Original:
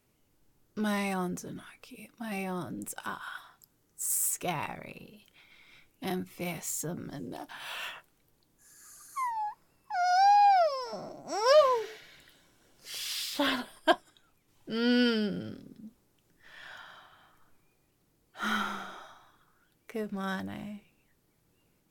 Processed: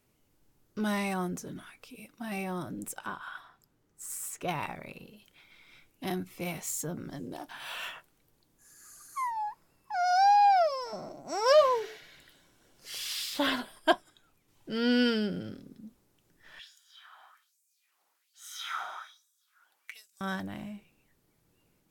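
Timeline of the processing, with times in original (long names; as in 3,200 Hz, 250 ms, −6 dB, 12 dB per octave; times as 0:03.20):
0:02.98–0:04.49: high-shelf EQ 4,700 Hz −11.5 dB
0:16.59–0:20.21: auto-filter high-pass sine 1.2 Hz 800–7,700 Hz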